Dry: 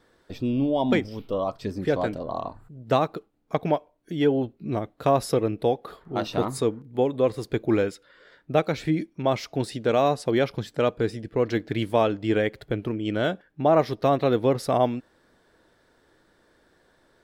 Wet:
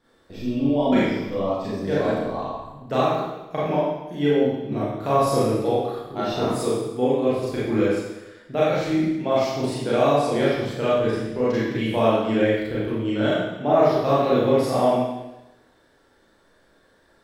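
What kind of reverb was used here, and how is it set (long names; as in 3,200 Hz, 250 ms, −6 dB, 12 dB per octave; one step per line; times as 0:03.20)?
four-comb reverb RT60 1 s, combs from 28 ms, DRR −9 dB
level −6.5 dB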